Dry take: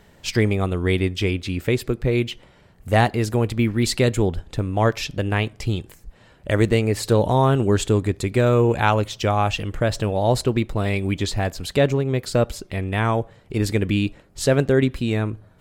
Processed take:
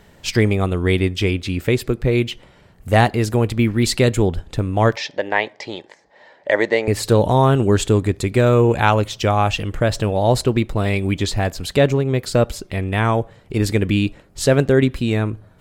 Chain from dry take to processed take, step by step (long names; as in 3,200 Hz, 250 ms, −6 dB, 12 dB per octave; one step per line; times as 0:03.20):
0:04.96–0:06.88: loudspeaker in its box 420–5,800 Hz, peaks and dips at 580 Hz +7 dB, 880 Hz +8 dB, 1,300 Hz −7 dB, 1,900 Hz +9 dB, 2,700 Hz −6 dB
level +3 dB